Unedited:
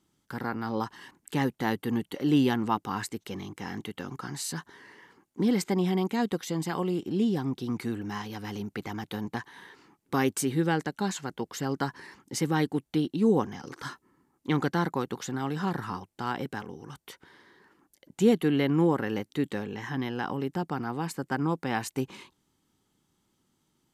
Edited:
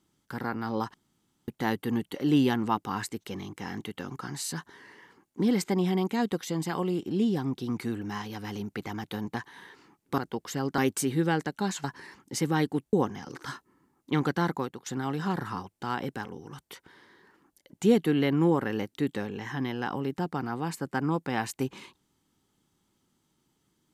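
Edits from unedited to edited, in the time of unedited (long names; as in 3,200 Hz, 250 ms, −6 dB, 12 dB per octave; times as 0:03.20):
0:00.94–0:01.48: fill with room tone
0:11.24–0:11.84: move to 0:10.18
0:12.93–0:13.30: remove
0:14.92–0:15.23: fade out, to −17.5 dB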